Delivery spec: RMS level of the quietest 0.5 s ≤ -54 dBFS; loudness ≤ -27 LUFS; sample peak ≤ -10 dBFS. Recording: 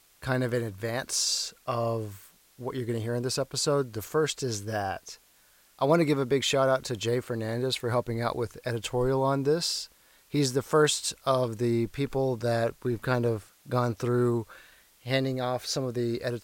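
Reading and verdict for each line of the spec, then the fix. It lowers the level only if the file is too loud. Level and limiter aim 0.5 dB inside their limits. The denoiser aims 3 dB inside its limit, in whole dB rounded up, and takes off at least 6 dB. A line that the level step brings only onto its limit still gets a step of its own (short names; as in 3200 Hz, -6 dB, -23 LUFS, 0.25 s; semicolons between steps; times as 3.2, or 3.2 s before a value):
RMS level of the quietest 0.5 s -61 dBFS: OK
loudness -28.5 LUFS: OK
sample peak -11.0 dBFS: OK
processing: none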